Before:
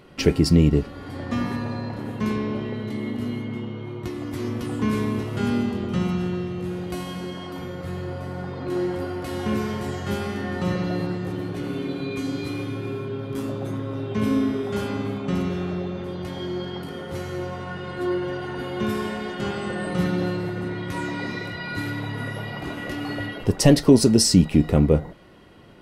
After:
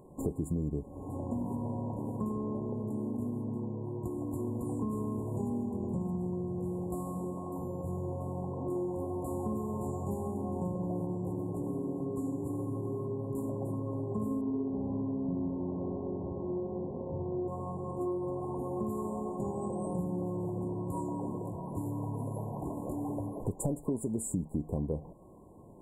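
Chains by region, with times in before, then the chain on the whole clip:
14.41–17.48 s: median filter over 41 samples + low-pass 1.6 kHz + flutter echo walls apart 10.9 m, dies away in 1.3 s
whole clip: FFT band-reject 1.1–6.9 kHz; compression 5:1, threshold -27 dBFS; trim -4 dB

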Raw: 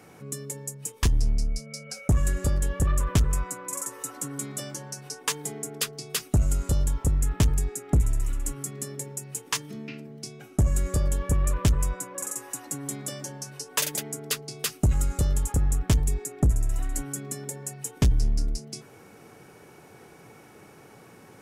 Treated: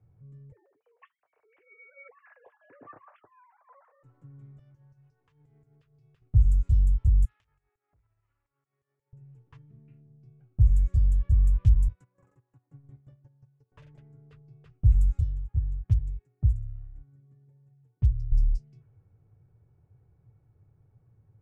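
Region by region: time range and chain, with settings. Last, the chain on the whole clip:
0.52–4.03 s: formants replaced by sine waves + high-pass 440 Hz + flange 1.2 Hz, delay 6.4 ms, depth 1.4 ms, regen -48%
4.59–6.22 s: tilt shelf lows -6 dB, about 1.2 kHz + compression 2.5:1, threshold -36 dBFS
7.25–9.13 s: high-pass 1.1 kHz + compression, threshold -42 dBFS
11.88–13.72 s: high-pass 79 Hz 24 dB/octave + gate -36 dBFS, range -13 dB
15.20–18.32 s: high-pass 60 Hz + upward expansion, over -37 dBFS
whole clip: FFT filter 110 Hz 0 dB, 210 Hz -25 dB, 960 Hz -20 dB, 2.7 kHz -13 dB, 5 kHz -16 dB; level-controlled noise filter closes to 940 Hz, open at -20 dBFS; bass shelf 400 Hz +11 dB; trim -7.5 dB

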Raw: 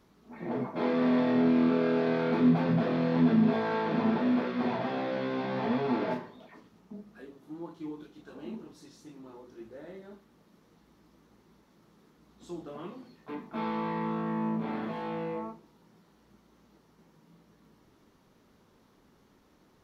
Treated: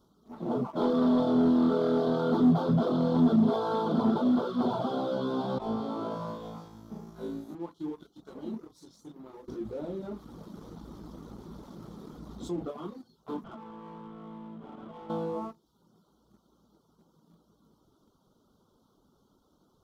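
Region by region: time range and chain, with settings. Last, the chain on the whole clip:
5.58–7.55 s: compression 12:1, threshold -38 dBFS + doubling 36 ms -12.5 dB + flutter echo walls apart 3.1 m, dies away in 1.4 s
9.48–12.71 s: tilt EQ -1.5 dB/octave + level flattener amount 50%
13.44–15.10 s: one-bit delta coder 16 kbps, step -38.5 dBFS + compression 10:1, threshold -42 dBFS
whole clip: reverb removal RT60 0.59 s; elliptic band-stop 1.4–3.2 kHz; waveshaping leveller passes 1

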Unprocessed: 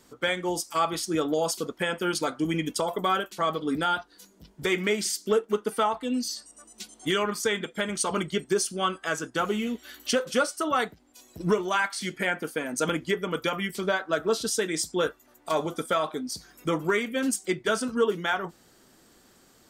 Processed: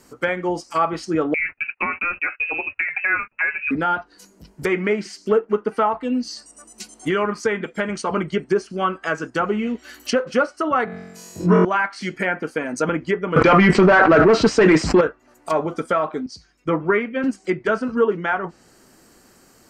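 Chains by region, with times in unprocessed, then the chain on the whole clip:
1.34–3.71 s: frequency inversion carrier 2.8 kHz + gate -42 dBFS, range -22 dB
10.85–11.65 s: high-pass 88 Hz + flutter echo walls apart 3.8 m, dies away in 1.2 s
13.36–15.01 s: elliptic low-pass 8.4 kHz + waveshaping leveller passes 3 + level flattener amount 100%
16.26–17.24 s: low-pass 3.9 kHz + three bands expanded up and down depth 70%
whole clip: low-pass that closes with the level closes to 2.2 kHz, closed at -23.5 dBFS; peaking EQ 3.5 kHz -13.5 dB 0.21 oct; trim +6 dB

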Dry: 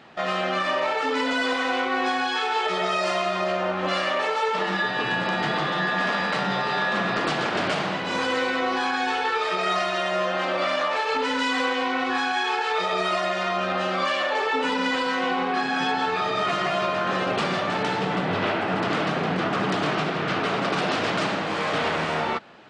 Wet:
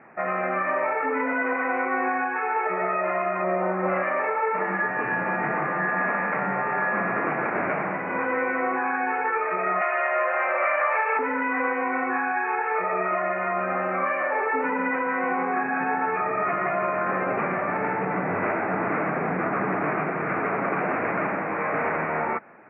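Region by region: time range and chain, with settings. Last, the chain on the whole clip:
3.43–4.03 s: comb 5.4 ms, depth 67% + decimation joined by straight lines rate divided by 8×
9.81–11.19 s: high-pass 430 Hz 24 dB/octave + treble shelf 2.2 kHz +10.5 dB
whole clip: steep low-pass 2.4 kHz 96 dB/octave; bass shelf 110 Hz -10.5 dB

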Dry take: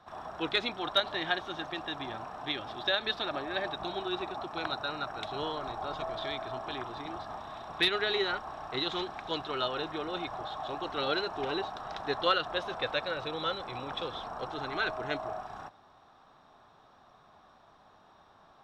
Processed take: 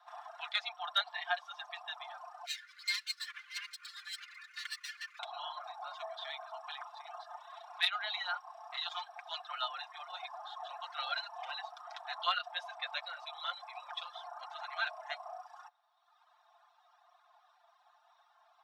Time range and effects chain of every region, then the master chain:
2.45–5.19 s: comb filter that takes the minimum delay 3 ms + high-pass 1.1 kHz 24 dB/octave + frequency shift +440 Hz
whole clip: reverb removal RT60 1.4 s; steep high-pass 640 Hz 96 dB/octave; comb 5.7 ms; trim -5 dB

